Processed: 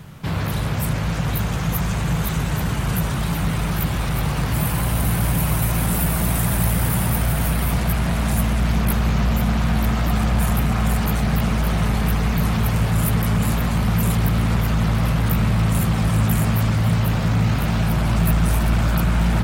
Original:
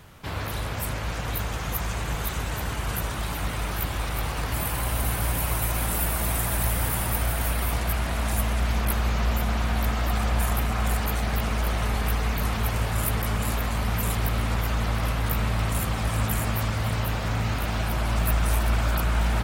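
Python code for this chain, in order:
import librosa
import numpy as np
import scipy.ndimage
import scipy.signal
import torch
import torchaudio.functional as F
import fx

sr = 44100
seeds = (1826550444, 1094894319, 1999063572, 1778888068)

p1 = fx.peak_eq(x, sr, hz=160.0, db=13.0, octaves=1.0)
p2 = np.clip(10.0 ** (22.5 / 20.0) * p1, -1.0, 1.0) / 10.0 ** (22.5 / 20.0)
y = p1 + (p2 * 10.0 ** (-5.0 / 20.0))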